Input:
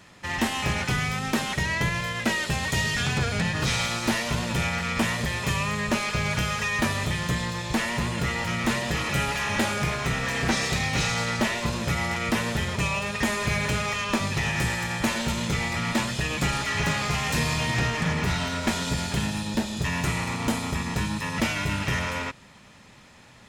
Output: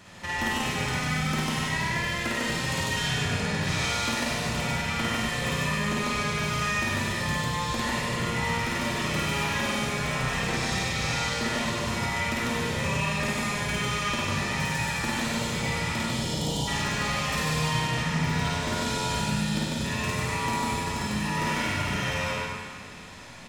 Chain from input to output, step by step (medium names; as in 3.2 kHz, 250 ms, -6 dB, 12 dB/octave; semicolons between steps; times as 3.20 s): time-frequency box 16.01–16.68 s, 1–2.8 kHz -25 dB; compression 6:1, threshold -32 dBFS, peak gain reduction 12 dB; loudspeakers at several distances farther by 18 m -1 dB, 51 m -1 dB; Schroeder reverb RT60 1.8 s, combs from 32 ms, DRR -0.5 dB